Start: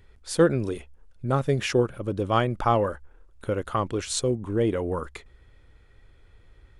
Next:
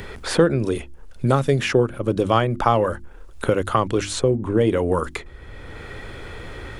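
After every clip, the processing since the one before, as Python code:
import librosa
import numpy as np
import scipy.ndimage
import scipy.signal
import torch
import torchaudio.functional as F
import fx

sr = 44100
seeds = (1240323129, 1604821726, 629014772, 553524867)

y = fx.hum_notches(x, sr, base_hz=50, count=7)
y = fx.band_squash(y, sr, depth_pct=70)
y = y * librosa.db_to_amplitude(6.0)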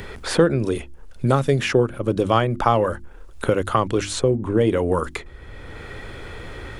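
y = x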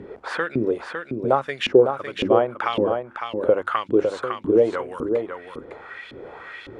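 y = fx.filter_lfo_bandpass(x, sr, shape='saw_up', hz=1.8, low_hz=260.0, high_hz=3600.0, q=2.1)
y = y + 10.0 ** (-6.0 / 20.0) * np.pad(y, (int(556 * sr / 1000.0), 0))[:len(y)]
y = y * librosa.db_to_amplitude(5.5)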